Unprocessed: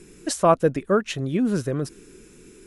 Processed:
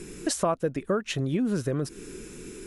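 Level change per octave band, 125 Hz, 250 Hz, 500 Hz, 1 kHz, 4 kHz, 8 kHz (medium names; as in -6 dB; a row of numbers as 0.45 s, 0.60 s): -3.0 dB, -4.0 dB, -6.5 dB, -8.5 dB, -1.5 dB, -1.0 dB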